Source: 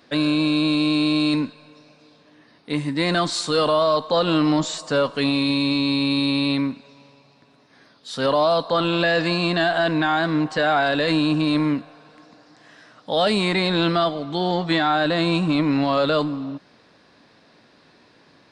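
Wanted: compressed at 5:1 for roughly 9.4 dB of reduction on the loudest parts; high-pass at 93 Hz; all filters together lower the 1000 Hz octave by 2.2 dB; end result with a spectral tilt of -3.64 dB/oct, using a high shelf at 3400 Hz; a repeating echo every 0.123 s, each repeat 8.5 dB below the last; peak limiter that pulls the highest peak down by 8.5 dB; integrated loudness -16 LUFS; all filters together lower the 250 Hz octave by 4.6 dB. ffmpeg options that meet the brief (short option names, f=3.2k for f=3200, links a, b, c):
-af "highpass=93,equalizer=f=250:t=o:g=-6,equalizer=f=1k:t=o:g=-3.5,highshelf=f=3.4k:g=8,acompressor=threshold=-27dB:ratio=5,alimiter=limit=-22dB:level=0:latency=1,aecho=1:1:123|246|369|492:0.376|0.143|0.0543|0.0206,volume=15dB"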